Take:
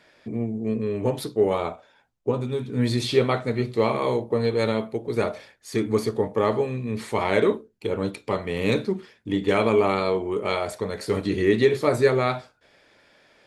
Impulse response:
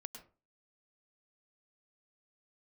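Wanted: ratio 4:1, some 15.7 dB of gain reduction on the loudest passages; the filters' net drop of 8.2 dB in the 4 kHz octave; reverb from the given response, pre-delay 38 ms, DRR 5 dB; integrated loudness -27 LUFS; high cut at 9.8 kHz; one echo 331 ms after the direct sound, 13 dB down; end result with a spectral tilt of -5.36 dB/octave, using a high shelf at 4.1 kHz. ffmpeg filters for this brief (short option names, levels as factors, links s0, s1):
-filter_complex "[0:a]lowpass=9800,equalizer=f=4000:t=o:g=-5.5,highshelf=f=4100:g=-8,acompressor=threshold=0.0224:ratio=4,aecho=1:1:331:0.224,asplit=2[s0][s1];[1:a]atrim=start_sample=2205,adelay=38[s2];[s1][s2]afir=irnorm=-1:irlink=0,volume=0.944[s3];[s0][s3]amix=inputs=2:normalize=0,volume=2.51"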